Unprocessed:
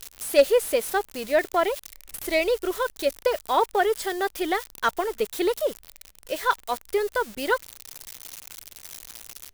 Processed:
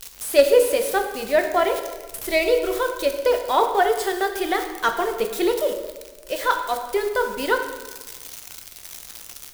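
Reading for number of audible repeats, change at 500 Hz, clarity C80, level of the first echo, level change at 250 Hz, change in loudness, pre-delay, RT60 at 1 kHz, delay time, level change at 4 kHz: no echo, +3.5 dB, 9.0 dB, no echo, +3.0 dB, +3.5 dB, 6 ms, 1.2 s, no echo, +3.0 dB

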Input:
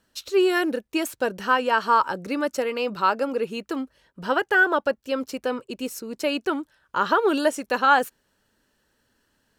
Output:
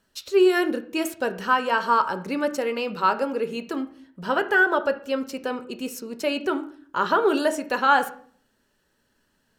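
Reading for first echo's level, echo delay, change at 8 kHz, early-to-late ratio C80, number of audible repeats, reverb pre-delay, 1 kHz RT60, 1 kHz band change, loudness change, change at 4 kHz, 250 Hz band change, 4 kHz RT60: no echo, no echo, -1.0 dB, 17.5 dB, no echo, 5 ms, 0.45 s, -0.5 dB, 0.0 dB, -1.0 dB, +0.5 dB, 0.40 s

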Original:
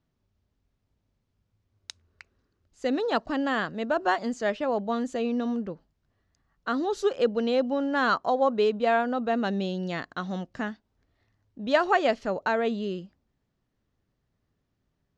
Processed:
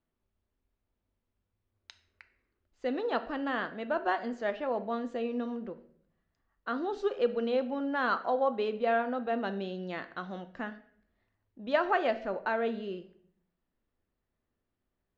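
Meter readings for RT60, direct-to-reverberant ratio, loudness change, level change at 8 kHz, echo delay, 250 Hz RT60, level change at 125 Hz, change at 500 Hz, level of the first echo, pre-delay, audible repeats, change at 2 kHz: 0.60 s, 9.0 dB, -5.5 dB, no reading, no echo, 0.90 s, no reading, -5.0 dB, no echo, 5 ms, no echo, -5.0 dB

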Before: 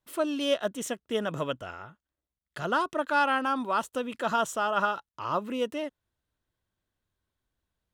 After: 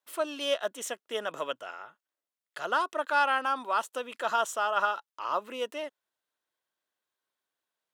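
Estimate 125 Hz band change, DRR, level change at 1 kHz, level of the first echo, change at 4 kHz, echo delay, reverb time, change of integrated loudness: under -15 dB, no reverb, -0.5 dB, no echo, 0.0 dB, no echo, no reverb, -1.0 dB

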